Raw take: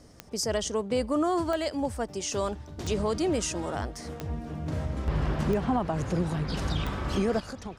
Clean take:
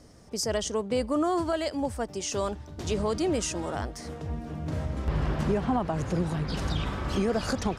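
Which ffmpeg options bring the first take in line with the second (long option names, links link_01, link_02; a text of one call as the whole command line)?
ffmpeg -i in.wav -af "adeclick=threshold=4,asetnsamples=nb_out_samples=441:pad=0,asendcmd='7.4 volume volume 10.5dB',volume=0dB" out.wav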